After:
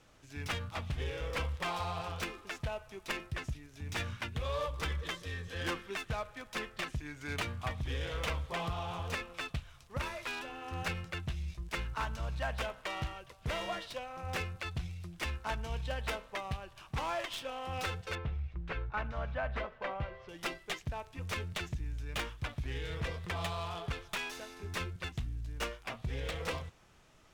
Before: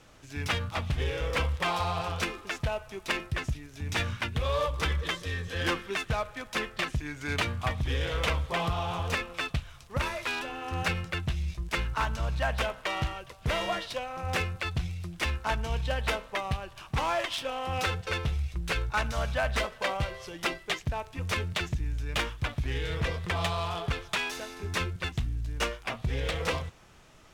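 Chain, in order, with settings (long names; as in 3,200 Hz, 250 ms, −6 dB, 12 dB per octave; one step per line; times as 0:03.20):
stylus tracing distortion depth 0.034 ms
0:18.15–0:20.29: low-pass filter 2,100 Hz 12 dB per octave
level −7 dB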